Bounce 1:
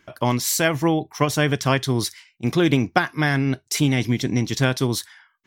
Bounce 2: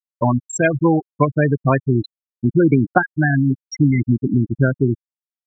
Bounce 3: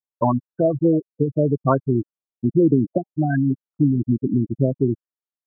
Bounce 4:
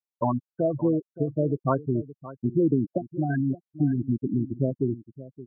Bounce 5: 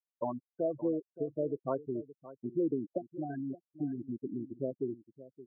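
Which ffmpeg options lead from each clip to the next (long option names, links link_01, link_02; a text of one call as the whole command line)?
ffmpeg -i in.wav -filter_complex "[0:a]afftfilt=real='re*gte(hypot(re,im),0.316)':imag='im*gte(hypot(re,im),0.316)':win_size=1024:overlap=0.75,asplit=2[link_01][link_02];[link_02]acompressor=threshold=-29dB:ratio=6,volume=-1dB[link_03];[link_01][link_03]amix=inputs=2:normalize=0,volume=3dB" out.wav
ffmpeg -i in.wav -af "lowshelf=frequency=140:gain=-8.5,afftfilt=real='re*lt(b*sr/1024,510*pow(1900/510,0.5+0.5*sin(2*PI*0.64*pts/sr)))':imag='im*lt(b*sr/1024,510*pow(1900/510,0.5+0.5*sin(2*PI*0.64*pts/sr)))':win_size=1024:overlap=0.75" out.wav
ffmpeg -i in.wav -af "aecho=1:1:571:0.15,volume=-6dB" out.wav
ffmpeg -i in.wav -af "bandpass=frequency=490:width_type=q:width=1.3:csg=0,volume=-5.5dB" out.wav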